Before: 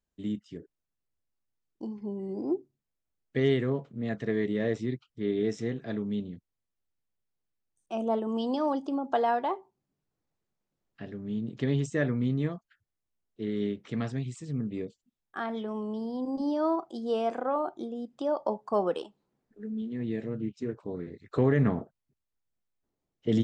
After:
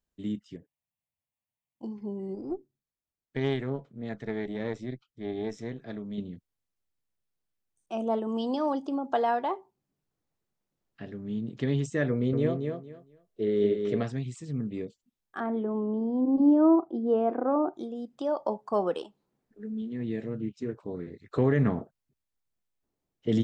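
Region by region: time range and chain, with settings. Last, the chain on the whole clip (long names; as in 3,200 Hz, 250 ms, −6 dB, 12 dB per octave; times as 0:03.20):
0:00.56–0:01.84: high-pass filter 88 Hz + phaser with its sweep stopped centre 1,400 Hz, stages 6
0:02.35–0:06.18: notch filter 2,800 Hz, Q 15 + tube saturation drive 18 dB, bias 0.8
0:12.10–0:14.03: flat-topped bell 500 Hz +9.5 dB 1.1 octaves + repeating echo 230 ms, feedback 21%, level −5.5 dB
0:15.40–0:17.74: low-pass filter 1,500 Hz + parametric band 310 Hz +10.5 dB 0.9 octaves
whole clip: no processing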